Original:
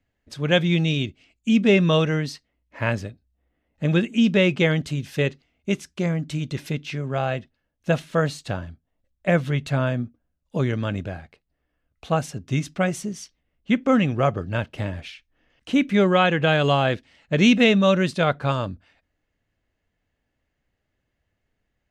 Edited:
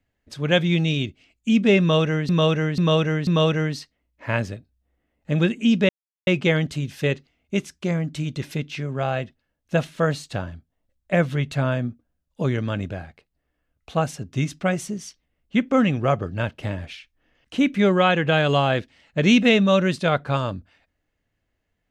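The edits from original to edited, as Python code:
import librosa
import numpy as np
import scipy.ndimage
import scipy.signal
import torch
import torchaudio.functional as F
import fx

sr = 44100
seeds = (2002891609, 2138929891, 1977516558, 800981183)

y = fx.edit(x, sr, fx.repeat(start_s=1.8, length_s=0.49, count=4),
    fx.insert_silence(at_s=4.42, length_s=0.38), tone=tone)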